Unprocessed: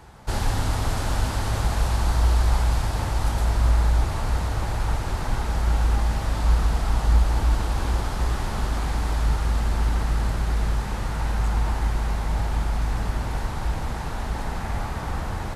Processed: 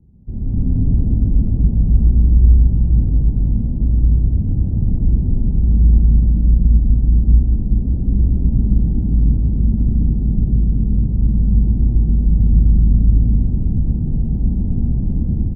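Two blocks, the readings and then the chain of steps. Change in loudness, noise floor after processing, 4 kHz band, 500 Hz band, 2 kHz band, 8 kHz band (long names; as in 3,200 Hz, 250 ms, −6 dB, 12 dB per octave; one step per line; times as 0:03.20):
+9.0 dB, −21 dBFS, below −40 dB, −5.0 dB, below −40 dB, below −40 dB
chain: automatic gain control gain up to 10.5 dB
transistor ladder low-pass 270 Hz, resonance 40%
loudspeakers that aren't time-aligned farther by 45 metres −2 dB, 67 metres −9 dB, 86 metres −4 dB
level +6 dB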